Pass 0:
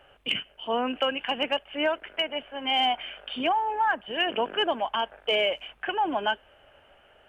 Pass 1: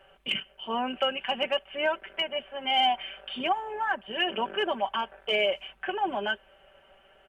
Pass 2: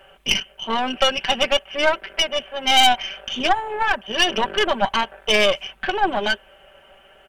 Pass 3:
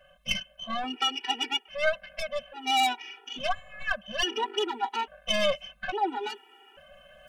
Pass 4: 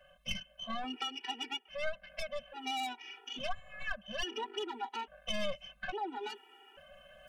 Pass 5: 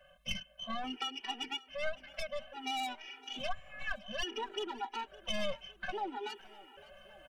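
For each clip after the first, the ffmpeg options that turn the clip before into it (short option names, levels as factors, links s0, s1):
-af "aecho=1:1:5.2:0.69,volume=0.708"
-af "aeval=exprs='0.2*(cos(1*acos(clip(val(0)/0.2,-1,1)))-cos(1*PI/2))+0.0562*(cos(4*acos(clip(val(0)/0.2,-1,1)))-cos(4*PI/2))+0.0224*(cos(6*acos(clip(val(0)/0.2,-1,1)))-cos(6*PI/2))+0.0112*(cos(8*acos(clip(val(0)/0.2,-1,1)))-cos(8*PI/2))':c=same,highshelf=f=4100:g=5.5,volume=2.37"
-af "areverse,acompressor=mode=upward:threshold=0.0158:ratio=2.5,areverse,afftfilt=real='re*gt(sin(2*PI*0.59*pts/sr)*(1-2*mod(floor(b*sr/1024/250),2)),0)':imag='im*gt(sin(2*PI*0.59*pts/sr)*(1-2*mod(floor(b*sr/1024/250),2)),0)':win_size=1024:overlap=0.75,volume=0.473"
-filter_complex "[0:a]acrossover=split=220[s0][s1];[s1]acompressor=threshold=0.0178:ratio=2.5[s2];[s0][s2]amix=inputs=2:normalize=0,volume=0.668"
-af "aecho=1:1:561|1122|1683|2244:0.0891|0.0455|0.0232|0.0118"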